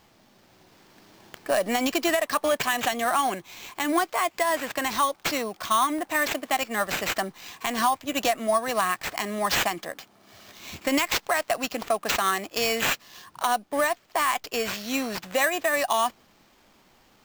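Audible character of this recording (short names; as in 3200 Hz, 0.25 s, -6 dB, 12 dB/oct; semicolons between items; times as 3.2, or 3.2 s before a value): aliases and images of a low sample rate 9900 Hz, jitter 0%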